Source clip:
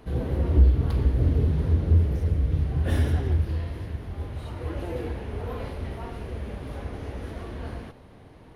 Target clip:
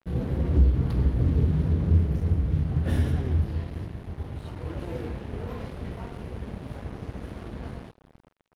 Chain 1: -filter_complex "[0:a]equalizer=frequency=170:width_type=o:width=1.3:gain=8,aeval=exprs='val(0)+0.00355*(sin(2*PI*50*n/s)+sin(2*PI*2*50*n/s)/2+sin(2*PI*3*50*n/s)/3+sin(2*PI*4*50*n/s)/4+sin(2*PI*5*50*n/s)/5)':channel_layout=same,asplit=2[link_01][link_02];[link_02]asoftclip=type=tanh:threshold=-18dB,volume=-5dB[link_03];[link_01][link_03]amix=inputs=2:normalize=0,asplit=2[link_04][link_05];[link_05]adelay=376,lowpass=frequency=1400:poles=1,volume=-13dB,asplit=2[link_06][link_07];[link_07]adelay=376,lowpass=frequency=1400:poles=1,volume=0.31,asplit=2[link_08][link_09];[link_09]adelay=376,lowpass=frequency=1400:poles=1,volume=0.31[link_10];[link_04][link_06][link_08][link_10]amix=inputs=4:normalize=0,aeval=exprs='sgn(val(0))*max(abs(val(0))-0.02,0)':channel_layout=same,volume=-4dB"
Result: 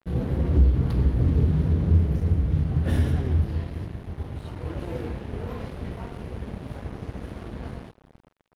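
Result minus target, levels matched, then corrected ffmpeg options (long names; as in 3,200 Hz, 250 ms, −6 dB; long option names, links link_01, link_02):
soft clipping: distortion −7 dB
-filter_complex "[0:a]equalizer=frequency=170:width_type=o:width=1.3:gain=8,aeval=exprs='val(0)+0.00355*(sin(2*PI*50*n/s)+sin(2*PI*2*50*n/s)/2+sin(2*PI*3*50*n/s)/3+sin(2*PI*4*50*n/s)/4+sin(2*PI*5*50*n/s)/5)':channel_layout=same,asplit=2[link_01][link_02];[link_02]asoftclip=type=tanh:threshold=-29dB,volume=-5dB[link_03];[link_01][link_03]amix=inputs=2:normalize=0,asplit=2[link_04][link_05];[link_05]adelay=376,lowpass=frequency=1400:poles=1,volume=-13dB,asplit=2[link_06][link_07];[link_07]adelay=376,lowpass=frequency=1400:poles=1,volume=0.31,asplit=2[link_08][link_09];[link_09]adelay=376,lowpass=frequency=1400:poles=1,volume=0.31[link_10];[link_04][link_06][link_08][link_10]amix=inputs=4:normalize=0,aeval=exprs='sgn(val(0))*max(abs(val(0))-0.02,0)':channel_layout=same,volume=-4dB"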